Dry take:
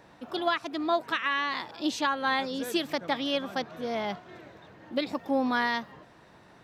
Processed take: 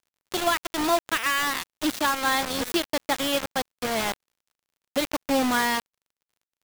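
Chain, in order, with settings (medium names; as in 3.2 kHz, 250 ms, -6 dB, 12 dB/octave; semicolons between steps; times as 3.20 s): bit crusher 5-bit; crackle 40 per s -58 dBFS; trim +3 dB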